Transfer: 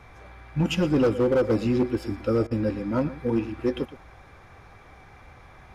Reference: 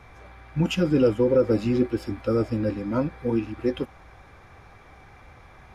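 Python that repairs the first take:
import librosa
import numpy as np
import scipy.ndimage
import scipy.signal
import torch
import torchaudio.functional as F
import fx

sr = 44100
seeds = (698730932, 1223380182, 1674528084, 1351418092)

y = fx.fix_declip(x, sr, threshold_db=-16.5)
y = fx.fix_interpolate(y, sr, at_s=(2.47,), length_ms=39.0)
y = fx.fix_echo_inverse(y, sr, delay_ms=116, level_db=-15.5)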